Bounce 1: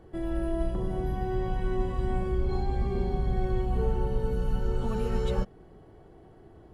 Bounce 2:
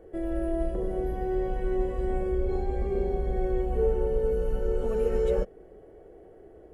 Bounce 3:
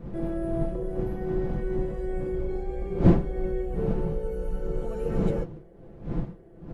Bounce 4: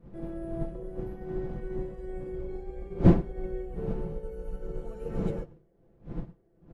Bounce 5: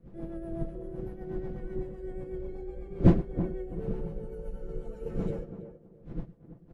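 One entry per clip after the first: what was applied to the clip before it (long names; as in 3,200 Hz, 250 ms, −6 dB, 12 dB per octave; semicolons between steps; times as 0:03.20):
graphic EQ with 10 bands 125 Hz −11 dB, 250 Hz −3 dB, 500 Hz +12 dB, 1,000 Hz −9 dB, 2,000 Hz +3 dB, 4,000 Hz −11 dB
wind on the microphone 200 Hz −27 dBFS; comb filter 5.9 ms, depth 56%; level −4 dB
slap from a distant wall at 17 metres, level −16 dB; expander for the loud parts 1.5 to 1, over −44 dBFS
rotating-speaker cabinet horn 8 Hz; tape delay 328 ms, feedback 27%, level −8.5 dB, low-pass 1,000 Hz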